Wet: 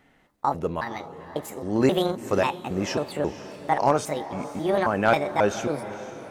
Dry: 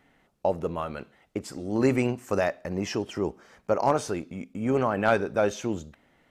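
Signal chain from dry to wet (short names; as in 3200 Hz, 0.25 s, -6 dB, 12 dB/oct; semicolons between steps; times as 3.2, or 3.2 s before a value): trilling pitch shifter +6.5 st, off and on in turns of 0.27 s; diffused feedback echo 0.497 s, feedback 45%, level -13.5 dB; gain +2.5 dB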